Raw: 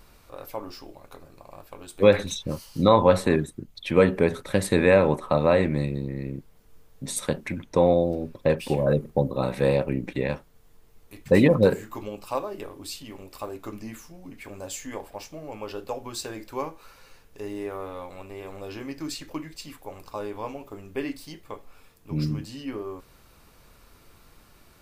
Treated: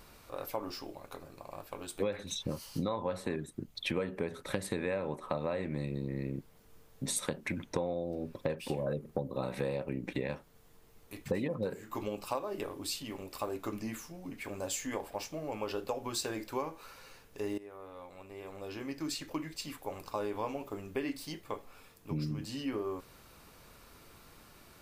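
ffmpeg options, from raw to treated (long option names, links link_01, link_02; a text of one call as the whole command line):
ffmpeg -i in.wav -filter_complex "[0:a]asplit=2[link_01][link_02];[link_01]atrim=end=17.58,asetpts=PTS-STARTPTS,afade=type=out:start_time=17.576:duration=0.004:curve=hsin:silence=0.11885[link_03];[link_02]atrim=start=17.58,asetpts=PTS-STARTPTS,afade=type=in:duration=2.19:silence=0.11885[link_04];[link_03][link_04]concat=n=2:v=0:a=1,acompressor=threshold=-30dB:ratio=12,lowshelf=frequency=62:gain=-9" out.wav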